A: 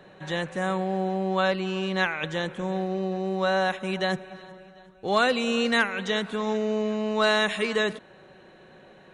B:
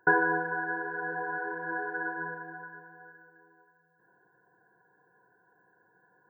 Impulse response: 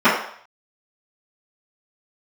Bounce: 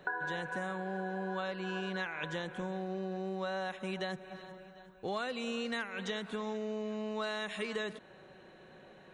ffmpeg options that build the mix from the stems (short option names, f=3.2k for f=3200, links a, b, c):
-filter_complex "[0:a]volume=-4.5dB[a];[1:a]highpass=600,volume=-3.5dB[b];[a][b]amix=inputs=2:normalize=0,acompressor=threshold=-34dB:ratio=5"